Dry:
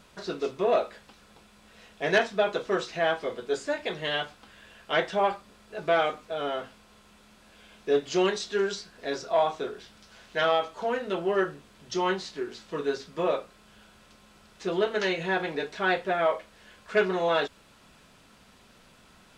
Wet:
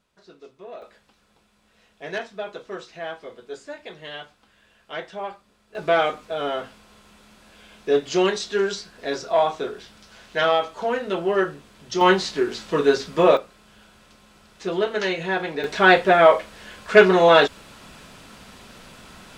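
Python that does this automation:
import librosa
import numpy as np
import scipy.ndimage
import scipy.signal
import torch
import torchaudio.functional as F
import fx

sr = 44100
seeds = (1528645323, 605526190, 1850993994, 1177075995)

y = fx.gain(x, sr, db=fx.steps((0.0, -15.5), (0.82, -7.0), (5.75, 4.5), (12.01, 11.0), (13.37, 3.0), (15.64, 11.5)))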